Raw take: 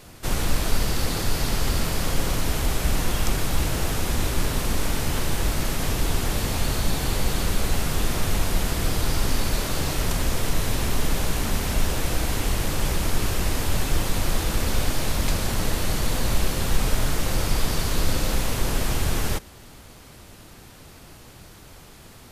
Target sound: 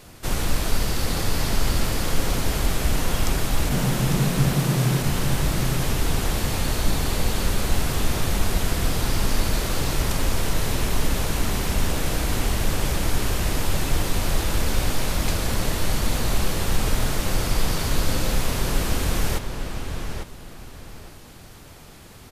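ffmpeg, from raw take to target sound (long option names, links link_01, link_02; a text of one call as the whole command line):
ffmpeg -i in.wav -filter_complex "[0:a]asplit=3[link_01][link_02][link_03];[link_01]afade=type=out:start_time=3.69:duration=0.02[link_04];[link_02]afreqshift=120,afade=type=in:start_time=3.69:duration=0.02,afade=type=out:start_time=5.02:duration=0.02[link_05];[link_03]afade=type=in:start_time=5.02:duration=0.02[link_06];[link_04][link_05][link_06]amix=inputs=3:normalize=0,asplit=2[link_07][link_08];[link_08]adelay=851,lowpass=frequency=4200:poles=1,volume=-6dB,asplit=2[link_09][link_10];[link_10]adelay=851,lowpass=frequency=4200:poles=1,volume=0.24,asplit=2[link_11][link_12];[link_12]adelay=851,lowpass=frequency=4200:poles=1,volume=0.24[link_13];[link_07][link_09][link_11][link_13]amix=inputs=4:normalize=0" out.wav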